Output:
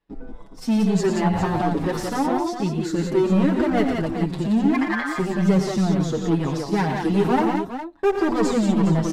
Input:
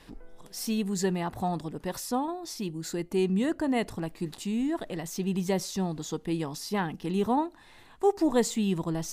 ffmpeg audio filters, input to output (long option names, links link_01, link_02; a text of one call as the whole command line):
ffmpeg -i in.wav -filter_complex "[0:a]asettb=1/sr,asplit=3[link_01][link_02][link_03];[link_01]atrim=end=1.354[link_04];[link_02]atrim=start=1.35:end=2.08,asetpts=PTS-STARTPTS,afade=type=in:duration=0.004:curve=qsin,afade=type=out:start_time=0.726:duration=0.004:curve=qsin,aeval=exprs='val(0)+0.5*0.00944*sgn(val(0))':channel_layout=same[link_05];[link_03]atrim=start=2.076[link_06];[link_04][link_05]acrossfade=duration=0.004:curve1=hsin:curve2=qsin[link_07];[link_07][link_06]acrossfade=duration=0.004:curve1=qsin:curve2=hsin,aemphasis=mode=reproduction:type=75fm,agate=range=-33dB:threshold=-44dB:ratio=16:detection=peak,asettb=1/sr,asplit=3[link_08][link_09][link_10];[link_08]atrim=end=6.864[link_11];[link_09]atrim=start=6.86:end=7.29,asetpts=PTS-STARTPTS,afade=type=in:duration=0.004:curve=qsin,afade=type=out:start_time=0.426:duration=0.004:curve=qsin,highshelf=frequency=5100:gain=11.5[link_12];[link_10]atrim=start=7.286[link_13];[link_11][link_12]acrossfade=duration=0.004:curve1=hsin:curve2=qsin[link_14];[link_14][link_13]acrossfade=duration=0.004:curve1=qsin:curve2=hsin,asplit=2[link_15][link_16];[link_16]alimiter=limit=-21.5dB:level=0:latency=1:release=455,volume=-3dB[link_17];[link_15][link_17]amix=inputs=2:normalize=0,asplit=3[link_18][link_19][link_20];[link_18]afade=type=out:start_time=4.73:duration=0.02[link_21];[link_19]aeval=exprs='val(0)*sin(2*PI*1400*n/s)':channel_layout=same,afade=type=in:start_time=4.73:duration=0.02,afade=type=out:start_time=5.17:duration=0.02[link_22];[link_20]afade=type=in:start_time=5.17:duration=0.02[link_23];[link_21][link_22][link_23]amix=inputs=3:normalize=0,asoftclip=type=hard:threshold=-22dB,aecho=1:1:89|116|178|410:0.282|0.398|0.631|0.316,asplit=2[link_24][link_25];[link_25]adelay=6.5,afreqshift=-2.4[link_26];[link_24][link_26]amix=inputs=2:normalize=1,volume=7.5dB" out.wav